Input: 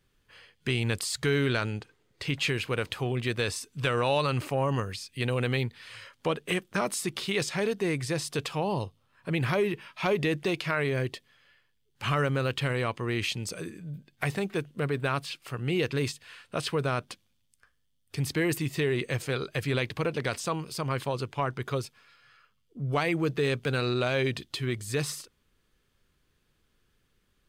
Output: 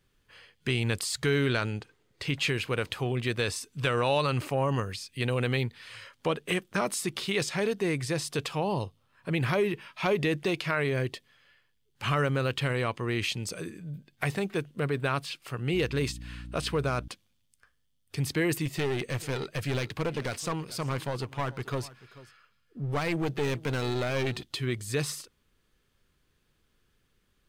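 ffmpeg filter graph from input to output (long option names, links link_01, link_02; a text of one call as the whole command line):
ffmpeg -i in.wav -filter_complex "[0:a]asettb=1/sr,asplit=3[link_01][link_02][link_03];[link_01]atrim=end=15.744[link_04];[link_02]atrim=start=15.74:end=17.08,asetpts=PTS-STARTPTS,afade=type=in:duration=0.004:curve=qsin,afade=type=out:start_time=1.336:duration=0.004:curve=qsin,asoftclip=type=hard:threshold=-20.5dB,aeval=exprs='val(0)+0.01*(sin(2*PI*60*n/s)+sin(2*PI*2*60*n/s)/2+sin(2*PI*3*60*n/s)/3+sin(2*PI*4*60*n/s)/4+sin(2*PI*5*60*n/s)/5)':channel_layout=same[link_05];[link_03]atrim=start=17.076[link_06];[link_04][link_05]acrossfade=duration=0.004:curve1=hsin:curve2=qsin[link_07];[link_07][link_06]acrossfade=duration=0.004:curve1=qsin:curve2=hsin,asettb=1/sr,asplit=3[link_08][link_09][link_10];[link_08]atrim=end=18.654[link_11];[link_09]atrim=start=18.65:end=24.43,asetpts=PTS-STARTPTS,afade=type=in:duration=0.004:curve=qsin,afade=type=out:start_time=5.776:duration=0.004:curve=qsin,aeval=exprs='clip(val(0),-1,0.0299)':channel_layout=same,aecho=1:1:437:0.119,atrim=end_sample=254898[link_12];[link_10]atrim=start=24.426[link_13];[link_11][link_12]acrossfade=duration=0.004:curve1=hsin:curve2=qsin[link_14];[link_14][link_13]acrossfade=duration=0.004:curve1=qsin:curve2=hsin" out.wav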